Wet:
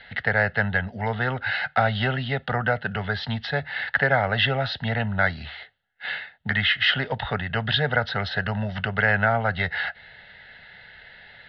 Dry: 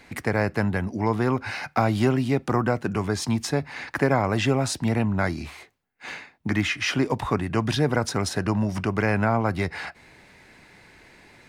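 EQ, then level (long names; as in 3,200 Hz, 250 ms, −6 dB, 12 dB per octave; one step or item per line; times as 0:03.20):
Butterworth low-pass 4,000 Hz 36 dB per octave
parametric band 2,500 Hz +13 dB 1.9 octaves
phaser with its sweep stopped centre 1,600 Hz, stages 8
0.0 dB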